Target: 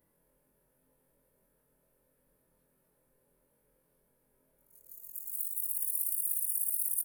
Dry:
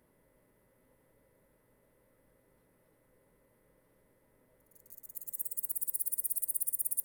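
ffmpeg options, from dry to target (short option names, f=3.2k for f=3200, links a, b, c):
-af "afftfilt=real='re':imag='-im':win_size=2048:overlap=0.75,crystalizer=i=1:c=0,volume=-1.5dB"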